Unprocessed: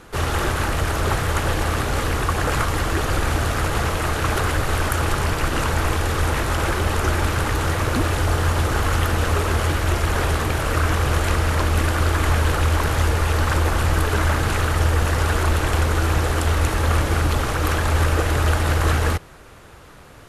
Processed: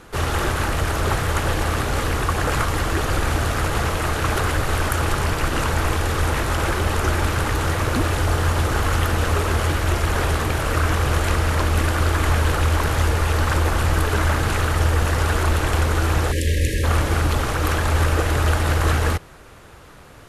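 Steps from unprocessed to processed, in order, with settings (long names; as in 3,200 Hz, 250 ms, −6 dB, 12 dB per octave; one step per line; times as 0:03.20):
time-frequency box erased 0:16.32–0:16.84, 600–1,600 Hz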